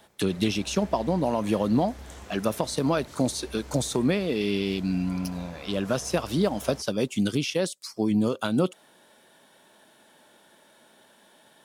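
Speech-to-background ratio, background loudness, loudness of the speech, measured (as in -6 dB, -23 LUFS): 18.5 dB, -45.5 LUFS, -27.0 LUFS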